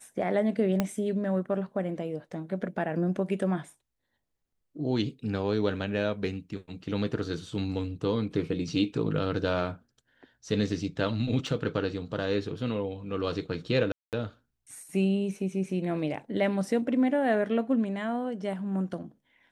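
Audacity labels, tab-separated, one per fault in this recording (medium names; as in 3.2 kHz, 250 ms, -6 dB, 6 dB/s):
0.800000	0.800000	pop -12 dBFS
11.470000	11.470000	dropout 2.7 ms
13.920000	14.130000	dropout 208 ms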